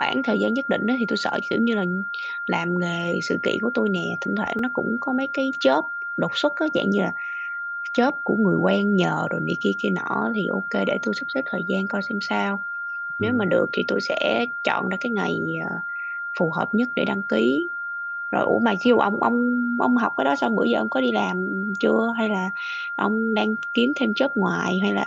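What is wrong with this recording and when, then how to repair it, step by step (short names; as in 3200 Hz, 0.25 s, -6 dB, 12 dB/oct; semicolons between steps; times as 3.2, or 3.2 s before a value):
tone 1400 Hz -27 dBFS
4.59 gap 2.5 ms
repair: notch 1400 Hz, Q 30; interpolate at 4.59, 2.5 ms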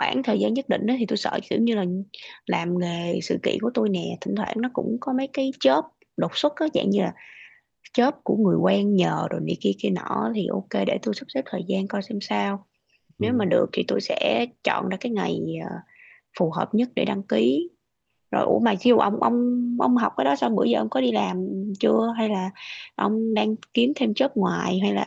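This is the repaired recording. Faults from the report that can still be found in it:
none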